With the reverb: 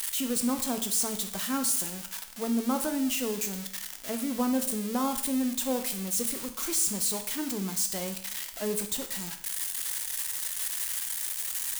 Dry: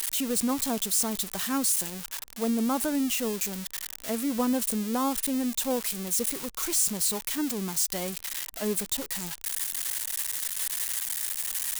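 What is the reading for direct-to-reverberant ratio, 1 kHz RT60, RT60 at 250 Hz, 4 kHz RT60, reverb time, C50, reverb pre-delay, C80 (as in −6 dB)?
6.0 dB, 0.70 s, 0.70 s, 0.70 s, 0.70 s, 10.0 dB, 9 ms, 13.5 dB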